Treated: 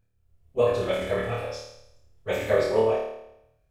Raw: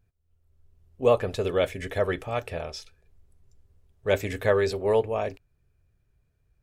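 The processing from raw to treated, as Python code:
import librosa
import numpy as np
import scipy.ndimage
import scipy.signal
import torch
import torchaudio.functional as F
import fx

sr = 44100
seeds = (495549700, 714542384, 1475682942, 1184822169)

y = fx.stretch_vocoder_free(x, sr, factor=0.56)
y = fx.room_flutter(y, sr, wall_m=4.6, rt60_s=0.8)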